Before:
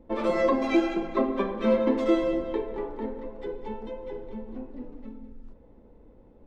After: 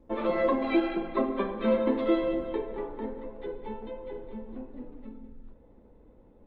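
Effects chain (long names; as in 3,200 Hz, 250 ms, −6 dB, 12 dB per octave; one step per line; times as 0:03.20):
elliptic low-pass filter 3,900 Hz, stop band 80 dB
0:01.62–0:02.46: background noise blue −79 dBFS
level −1.5 dB
Opus 32 kbit/s 48,000 Hz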